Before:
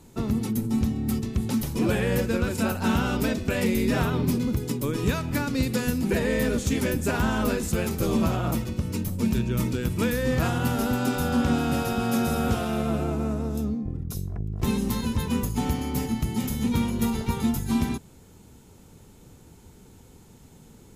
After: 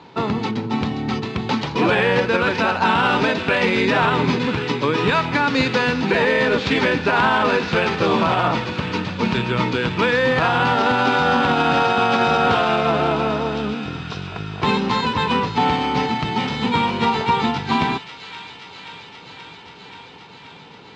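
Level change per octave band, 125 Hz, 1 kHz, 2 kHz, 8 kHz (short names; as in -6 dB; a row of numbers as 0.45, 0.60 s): +1.0, +15.0, +13.5, -6.0 dB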